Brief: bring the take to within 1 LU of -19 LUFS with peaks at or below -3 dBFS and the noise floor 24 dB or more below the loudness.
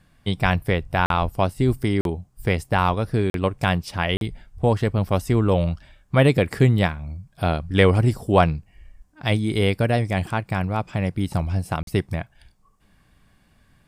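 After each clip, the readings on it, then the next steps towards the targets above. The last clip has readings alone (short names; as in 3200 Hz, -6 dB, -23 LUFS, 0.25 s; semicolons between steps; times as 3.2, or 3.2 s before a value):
dropouts 5; longest dropout 42 ms; loudness -22.5 LUFS; peak -2.0 dBFS; loudness target -19.0 LUFS
-> interpolate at 1.06/2.01/3.3/4.17/11.83, 42 ms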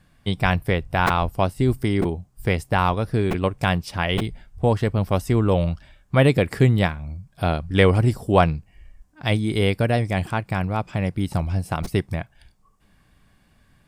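dropouts 0; loudness -22.0 LUFS; peak -2.0 dBFS; loudness target -19.0 LUFS
-> gain +3 dB; limiter -3 dBFS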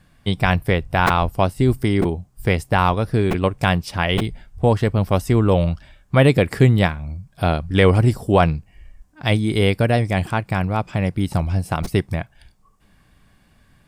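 loudness -19.5 LUFS; peak -3.0 dBFS; noise floor -57 dBFS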